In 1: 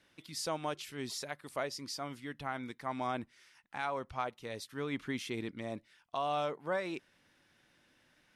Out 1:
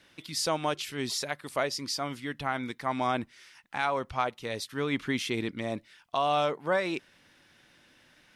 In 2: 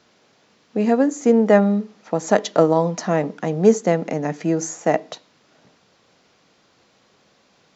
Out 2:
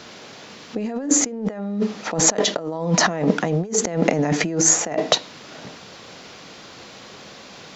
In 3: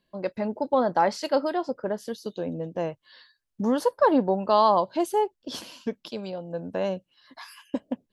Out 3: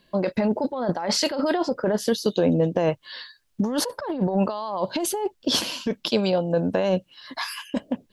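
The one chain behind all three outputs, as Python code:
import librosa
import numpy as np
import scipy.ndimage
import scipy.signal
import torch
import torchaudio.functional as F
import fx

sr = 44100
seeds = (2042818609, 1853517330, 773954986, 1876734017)

y = fx.peak_eq(x, sr, hz=3500.0, db=2.5, octaves=1.8)
y = fx.over_compress(y, sr, threshold_db=-30.0, ratio=-1.0)
y = y * librosa.db_to_amplitude(7.0)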